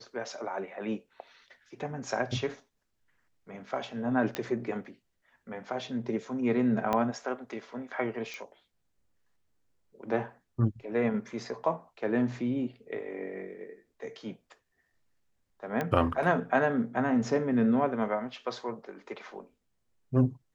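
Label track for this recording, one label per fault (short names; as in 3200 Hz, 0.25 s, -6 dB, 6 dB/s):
4.350000	4.350000	pop -16 dBFS
6.930000	6.930000	pop -15 dBFS
8.340000	8.340000	pop -26 dBFS
15.810000	15.810000	pop -18 dBFS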